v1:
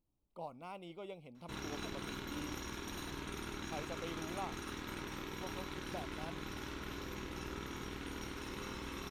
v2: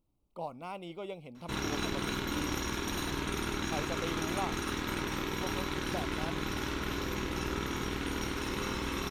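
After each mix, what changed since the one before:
speech +6.5 dB; background +9.5 dB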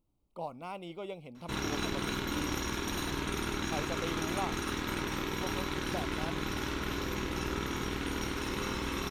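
none

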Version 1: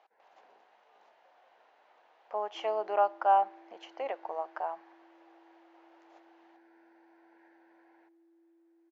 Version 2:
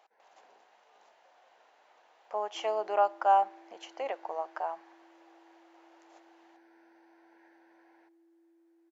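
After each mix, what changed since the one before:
master: remove air absorption 150 m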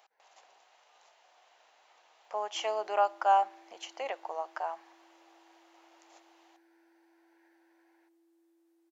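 first sound -7.0 dB; master: add tilt +2.5 dB/oct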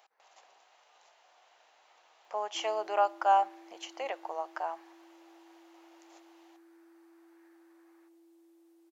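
first sound: remove Butterworth band-stop 1200 Hz, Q 3.7; second sound +7.5 dB

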